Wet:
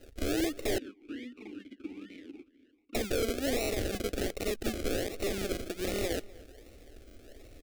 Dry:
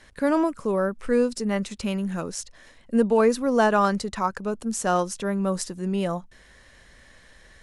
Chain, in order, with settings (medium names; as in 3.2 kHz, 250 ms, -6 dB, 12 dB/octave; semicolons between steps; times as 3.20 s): rattle on loud lows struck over -36 dBFS, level -14 dBFS; de-esser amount 55%; peak limiter -14.5 dBFS, peak gain reduction 8 dB; compression 10:1, threshold -26 dBFS, peak gain reduction 8 dB; decimation with a swept rate 38×, swing 60% 1.3 Hz; integer overflow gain 23.5 dB; static phaser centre 400 Hz, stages 4; echo from a far wall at 43 m, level -21 dB; 0.78–2.95 s: talking filter i-u 2.2 Hz; trim +2.5 dB